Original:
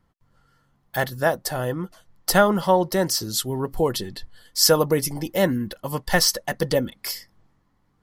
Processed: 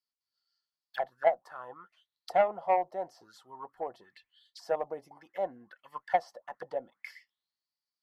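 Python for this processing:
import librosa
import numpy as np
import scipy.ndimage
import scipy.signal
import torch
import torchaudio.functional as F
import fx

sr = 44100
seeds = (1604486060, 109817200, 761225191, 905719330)

y = fx.auto_wah(x, sr, base_hz=710.0, top_hz=4800.0, q=8.2, full_db=-20.0, direction='down')
y = fx.cheby_harmonics(y, sr, harmonics=(3, 4, 6), levels_db=(-16, -43, -43), full_scale_db=-17.0)
y = y * librosa.db_to_amplitude(4.5)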